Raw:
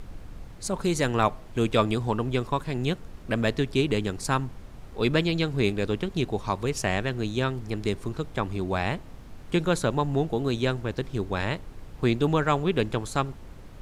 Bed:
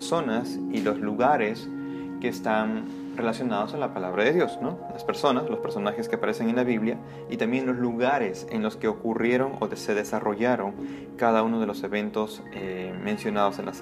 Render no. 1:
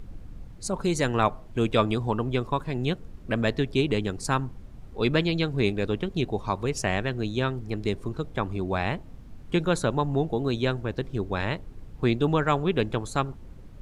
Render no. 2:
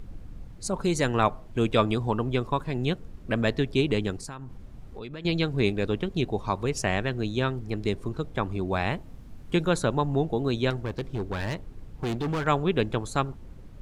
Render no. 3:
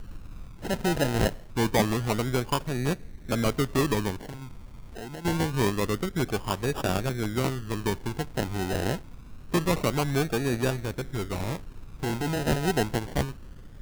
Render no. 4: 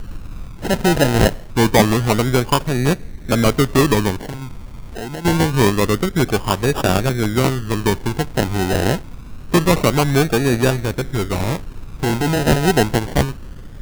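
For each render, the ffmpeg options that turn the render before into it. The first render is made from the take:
-af "afftdn=nr=8:nf=-44"
-filter_complex "[0:a]asettb=1/sr,asplit=3[a][b][c];[a]atrim=end=4.174[d];[b]atrim=start=4.17:end=5.25,asetpts=PTS-STARTPTS,afade=t=in:d=0.004:c=qsin,afade=t=out:st=1.076:d=0.004:c=qsin,acompressor=threshold=-35dB:ratio=8:attack=3.2:release=140:knee=1:detection=peak[e];[c]atrim=start=5.246[f];[d][e]acrossfade=d=0.004:c1=hsin:c2=qsin[g];[g][f]acrossfade=d=0.004:c1=qsin:c2=hsin,asettb=1/sr,asplit=3[h][i][j];[h]atrim=end=8.724[k];[i]atrim=start=8.72:end=9.7,asetpts=PTS-STARTPTS,afade=t=in:d=0.004:c=qsin,afade=t=out:st=0.976:d=0.004:c=qsin,highshelf=f=7.7k:g=5[l];[j]atrim=start=9.696[m];[k][l]acrossfade=d=0.004:c1=hsin:c2=qsin[n];[n][m]acrossfade=d=0.004:c1=qsin:c2=hsin,asettb=1/sr,asplit=3[o][p][q];[o]atrim=end=10.704[r];[p]atrim=start=10.7:end=12.47,asetpts=PTS-STARTPTS,afade=t=in:d=0.004:c=qsin,afade=t=out:st=1.766:d=0.004:c=qsin,asoftclip=type=hard:threshold=-25.5dB[s];[q]atrim=start=12.466[t];[r][s]acrossfade=d=0.004:c1=hsin:c2=qsin[u];[u][t]acrossfade=d=0.004:c1=qsin:c2=hsin"
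-af "acrusher=samples=30:mix=1:aa=0.000001:lfo=1:lforange=18:lforate=0.26,asoftclip=type=tanh:threshold=-12dB"
-af "volume=10.5dB"

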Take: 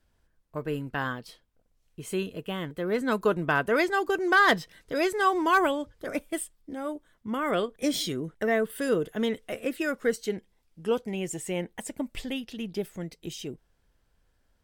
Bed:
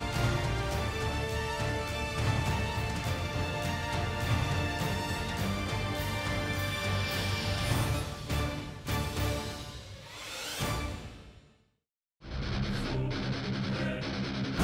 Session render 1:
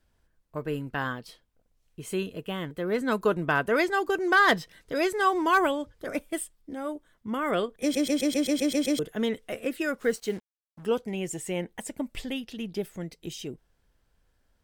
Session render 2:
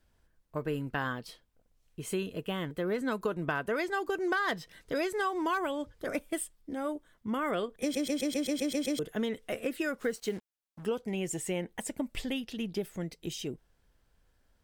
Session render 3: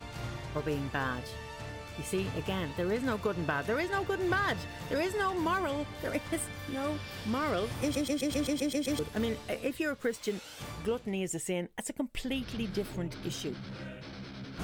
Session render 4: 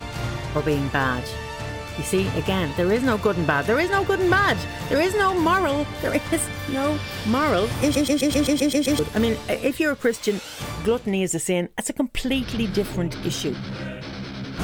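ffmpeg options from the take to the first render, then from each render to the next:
-filter_complex "[0:a]asettb=1/sr,asplit=3[a][b][c];[a]atrim=end=10.004[d];[b]atrim=start=10:end=10.86,asetpts=PTS-STARTPTS,afade=t=in:d=0.004:c=qsin,afade=t=out:st=0.856:d=0.004:c=qsin,acrusher=bits=7:mix=0:aa=0.5[e];[c]atrim=start=10.856[f];[d][e]acrossfade=d=0.004:c1=hsin:c2=qsin[g];[g][f]acrossfade=d=0.004:c1=qsin:c2=hsin,asplit=10[h][i][j][k][l][m][n][o][p][q];[h]atrim=end=7.952[r];[i]atrim=start=7.818:end=7.952[s];[j]atrim=start=7.818:end=7.952[t];[k]atrim=start=7.818:end=7.952[u];[l]atrim=start=7.818:end=7.952[v];[m]atrim=start=7.818:end=7.952[w];[n]atrim=start=7.818:end=7.952[x];[o]atrim=start=7.818:end=7.952[y];[p]atrim=start=7.818:end=7.952[z];[q]atrim=start=8.988[aa];[r][s]acrossfade=d=0.004:c1=hsin:c2=hsin[ab];[ab][t]acrossfade=d=0.004:c1=hsin:c2=hsin[ac];[ac][u]acrossfade=d=0.004:c1=hsin:c2=hsin[ad];[ad][v]acrossfade=d=0.004:c1=hsin:c2=hsin[ae];[ae][w]acrossfade=d=0.004:c1=hsin:c2=hsin[af];[af][x]acrossfade=d=0.004:c1=hsin:c2=hsin[ag];[ag][y]acrossfade=d=0.004:c1=hsin:c2=hsin[ah];[ah][z]acrossfade=d=0.004:c1=hsin:c2=hsin[ai];[ai][aa]acrossfade=d=0.004:c1=hsin:c2=hsin"
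-af "acompressor=threshold=-28dB:ratio=6"
-filter_complex "[1:a]volume=-10dB[a];[0:a][a]amix=inputs=2:normalize=0"
-af "volume=11dB"

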